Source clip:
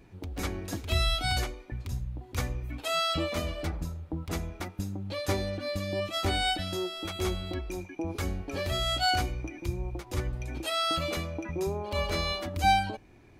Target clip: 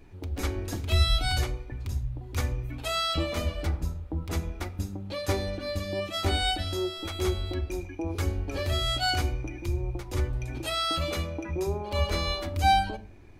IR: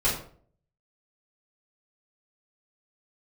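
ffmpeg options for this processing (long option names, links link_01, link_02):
-filter_complex "[0:a]asplit=2[link_01][link_02];[1:a]atrim=start_sample=2205,lowshelf=frequency=180:gain=9.5[link_03];[link_02][link_03]afir=irnorm=-1:irlink=0,volume=-23.5dB[link_04];[link_01][link_04]amix=inputs=2:normalize=0"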